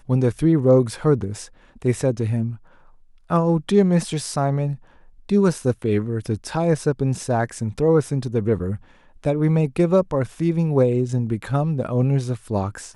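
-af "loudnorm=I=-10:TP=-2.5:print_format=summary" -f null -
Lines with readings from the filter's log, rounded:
Input Integrated:    -21.5 LUFS
Input True Peak:      -4.7 dBTP
Input LRA:             1.2 LU
Input Threshold:     -31.8 LUFS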